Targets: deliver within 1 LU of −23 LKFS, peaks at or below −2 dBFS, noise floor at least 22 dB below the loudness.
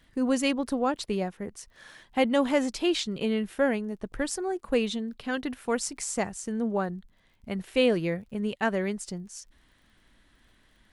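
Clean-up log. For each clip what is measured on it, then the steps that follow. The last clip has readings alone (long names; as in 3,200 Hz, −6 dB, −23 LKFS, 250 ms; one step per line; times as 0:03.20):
crackle rate 33 per second; integrated loudness −29.0 LKFS; sample peak −10.5 dBFS; target loudness −23.0 LKFS
→ click removal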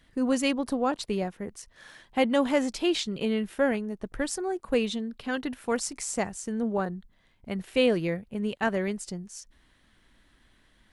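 crackle rate 0 per second; integrated loudness −29.0 LKFS; sample peak −10.5 dBFS; target loudness −23.0 LKFS
→ level +6 dB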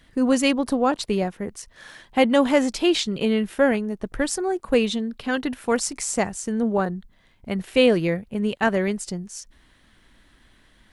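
integrated loudness −23.0 LKFS; sample peak −4.5 dBFS; background noise floor −57 dBFS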